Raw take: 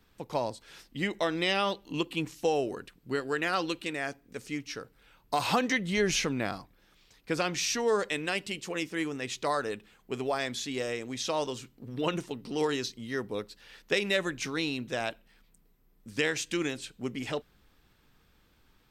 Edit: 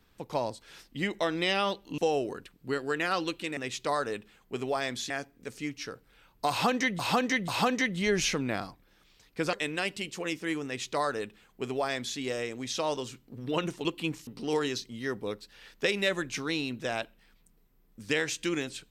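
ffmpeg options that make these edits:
-filter_complex "[0:a]asplit=9[a][b][c][d][e][f][g][h][i];[a]atrim=end=1.982[j];[b]atrim=start=2.398:end=3.992[k];[c]atrim=start=9.148:end=10.682[l];[d]atrim=start=3.988:end=5.882[m];[e]atrim=start=5.388:end=5.882[n];[f]atrim=start=5.388:end=7.442[o];[g]atrim=start=8.028:end=12.352[p];[h]atrim=start=1.978:end=2.402[q];[i]atrim=start=12.348[r];[j][k]acrossfade=d=0.004:c1=hsin:c2=hsin[s];[s][l]acrossfade=d=0.004:c1=hsin:c2=hsin[t];[t][m]acrossfade=d=0.004:c1=hsin:c2=hsin[u];[u][n]acrossfade=d=0.004:c1=hsin:c2=hsin[v];[v][o]acrossfade=d=0.004:c1=hsin:c2=hsin[w];[w][p]acrossfade=d=0.004:c1=hsin:c2=hsin[x];[x][q]acrossfade=d=0.004:c1=hsin:c2=hsin[y];[y][r]acrossfade=d=0.004:c1=hsin:c2=hsin"

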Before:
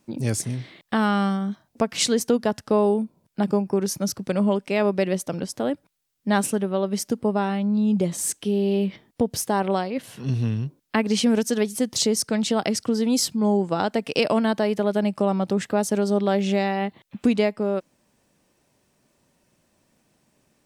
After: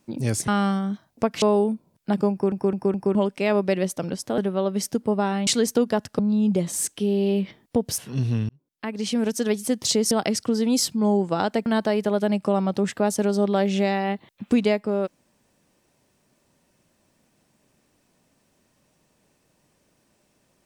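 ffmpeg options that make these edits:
-filter_complex "[0:a]asplit=14[a][b][c][d][e][f][g][h][i][j][k][l][m][n];[a]atrim=end=0.482[o];[b]atrim=start=1.058:end=2.002[p];[c]atrim=start=2.718:end=3.822[q];[d]atrim=start=3.608:end=3.822[r];[e]atrim=start=3.608:end=3.822[s];[f]atrim=start=3.608:end=3.822[t];[g]atrim=start=4.448:end=5.682[u];[h]atrim=start=6.548:end=7.642[v];[i]atrim=start=1.998:end=2.722[w];[j]atrim=start=7.638:end=9.432[x];[k]atrim=start=10.088:end=10.6,asetpts=PTS-STARTPTS,afade=t=out:st=0.508:d=0.004:c=hsin[y];[l]atrim=start=10.6:end=12.222,asetpts=PTS-STARTPTS,afade=t=in:d=1.08[z];[m]atrim=start=12.508:end=14.062[aa];[n]atrim=start=14.388[ab];[o][p]acrossfade=d=0.004:c1=hsin:c2=hsin[ac];[ac][q]acrossfade=d=0.004:c1=hsin:c2=hsin[ad];[ad][r]acrossfade=d=0.004:c1=hsin:c2=hsin[ae];[ae][s]acrossfade=d=0.004:c1=hsin:c2=hsin[af];[af][t]acrossfade=d=0.004:c1=hsin:c2=hsin[ag];[ag][u]acrossfade=d=0.004:c1=hsin:c2=hsin[ah];[ah][v]acrossfade=d=0.004:c1=hsin:c2=hsin[ai];[ai][w]acrossfade=d=0.004:c1=hsin:c2=hsin[aj];[aj][x]acrossfade=d=0.004:c1=hsin:c2=hsin[ak];[y][z]concat=n=2:v=0:a=1[al];[ak][al]acrossfade=d=0.004:c1=hsin:c2=hsin[am];[am][aa]acrossfade=d=0.004:c1=hsin:c2=hsin[an];[an][ab]acrossfade=d=0.004:c1=hsin:c2=hsin"

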